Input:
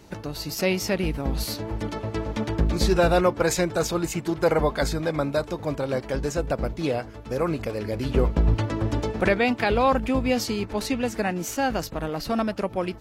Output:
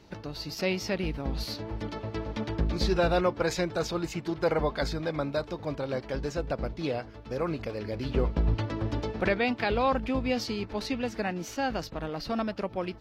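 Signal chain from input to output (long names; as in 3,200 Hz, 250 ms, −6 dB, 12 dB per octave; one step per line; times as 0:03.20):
high shelf with overshoot 6,300 Hz −8.5 dB, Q 1.5
level −5.5 dB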